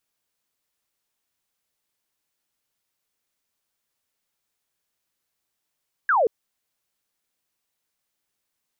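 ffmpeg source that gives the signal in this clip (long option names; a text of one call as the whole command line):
ffmpeg -f lavfi -i "aevalsrc='0.158*clip(t/0.002,0,1)*clip((0.18-t)/0.002,0,1)*sin(2*PI*1700*0.18/log(410/1700)*(exp(log(410/1700)*t/0.18)-1))':duration=0.18:sample_rate=44100" out.wav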